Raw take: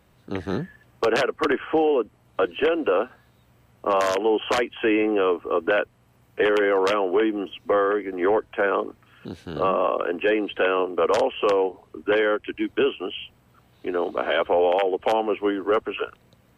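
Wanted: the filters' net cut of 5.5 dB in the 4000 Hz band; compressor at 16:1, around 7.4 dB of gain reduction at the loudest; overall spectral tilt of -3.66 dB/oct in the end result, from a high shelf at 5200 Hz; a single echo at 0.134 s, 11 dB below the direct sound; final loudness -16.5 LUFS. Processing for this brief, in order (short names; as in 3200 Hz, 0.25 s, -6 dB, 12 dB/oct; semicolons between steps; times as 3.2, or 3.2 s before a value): bell 4000 Hz -6 dB; high shelf 5200 Hz -6.5 dB; compressor 16:1, threshold -24 dBFS; echo 0.134 s -11 dB; gain +13 dB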